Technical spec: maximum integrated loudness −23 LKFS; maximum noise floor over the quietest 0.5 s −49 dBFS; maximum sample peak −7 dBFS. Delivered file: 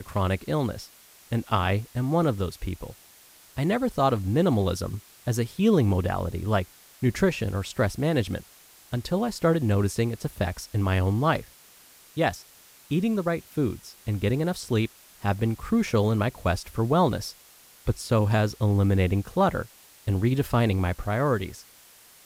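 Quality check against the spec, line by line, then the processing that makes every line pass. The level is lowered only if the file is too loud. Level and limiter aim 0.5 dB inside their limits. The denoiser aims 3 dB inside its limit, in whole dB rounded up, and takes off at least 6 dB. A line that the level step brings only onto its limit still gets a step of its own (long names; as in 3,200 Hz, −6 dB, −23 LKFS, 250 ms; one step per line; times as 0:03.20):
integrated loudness −26.0 LKFS: in spec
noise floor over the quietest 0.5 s −53 dBFS: in spec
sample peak −9.0 dBFS: in spec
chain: no processing needed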